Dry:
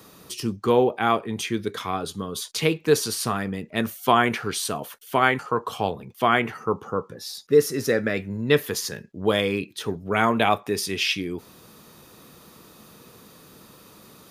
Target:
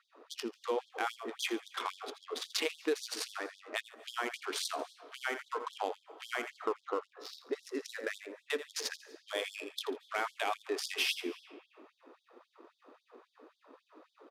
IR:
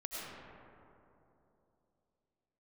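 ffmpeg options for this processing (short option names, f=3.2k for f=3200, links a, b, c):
-filter_complex "[0:a]adynamicsmooth=sensitivity=5.5:basefreq=1k,aecho=1:1:83:0.211,acompressor=threshold=-28dB:ratio=6,asplit=2[a][b];[1:a]atrim=start_sample=2205,adelay=142[c];[b][c]afir=irnorm=-1:irlink=0,volume=-18dB[d];[a][d]amix=inputs=2:normalize=0,aresample=32000,aresample=44100,afftfilt=real='re*gte(b*sr/1024,230*pow(3300/230,0.5+0.5*sin(2*PI*3.7*pts/sr)))':imag='im*gte(b*sr/1024,230*pow(3300/230,0.5+0.5*sin(2*PI*3.7*pts/sr)))':win_size=1024:overlap=0.75,volume=-1dB"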